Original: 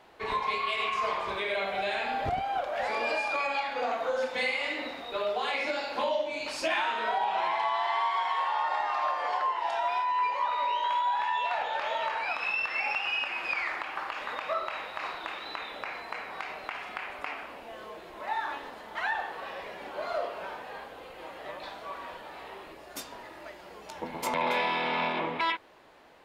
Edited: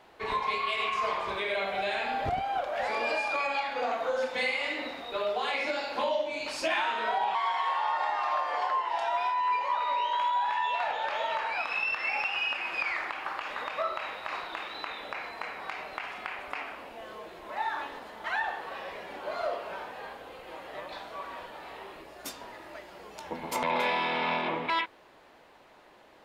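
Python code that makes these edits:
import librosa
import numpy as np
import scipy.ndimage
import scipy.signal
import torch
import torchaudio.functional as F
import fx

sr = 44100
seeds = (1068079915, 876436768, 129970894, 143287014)

y = fx.edit(x, sr, fx.cut(start_s=7.35, length_s=0.71), tone=tone)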